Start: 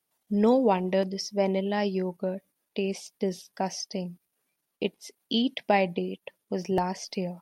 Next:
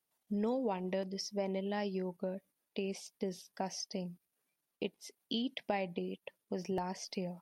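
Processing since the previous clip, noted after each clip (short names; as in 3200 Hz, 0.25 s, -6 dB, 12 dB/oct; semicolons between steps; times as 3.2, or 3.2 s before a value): compressor 2.5:1, threshold -28 dBFS, peak gain reduction 7.5 dB; gain -6 dB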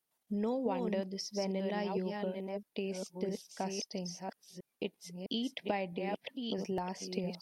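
reverse delay 0.658 s, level -4 dB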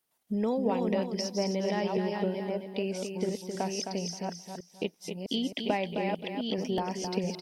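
feedback echo 0.263 s, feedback 24%, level -6.5 dB; gain +5 dB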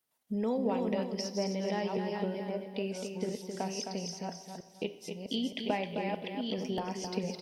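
reverb, pre-delay 3 ms, DRR 9.5 dB; gain -3.5 dB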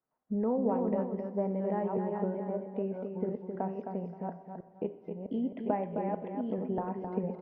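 LPF 1400 Hz 24 dB/oct; gain +1.5 dB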